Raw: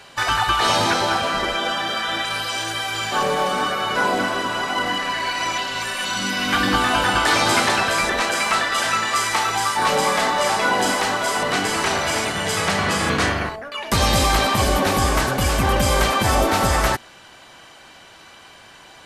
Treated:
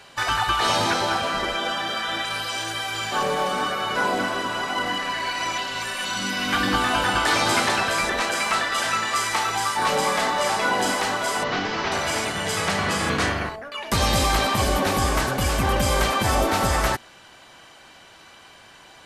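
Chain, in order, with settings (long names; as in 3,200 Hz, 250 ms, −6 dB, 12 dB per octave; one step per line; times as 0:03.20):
0:11.44–0:11.92: variable-slope delta modulation 32 kbit/s
level −3 dB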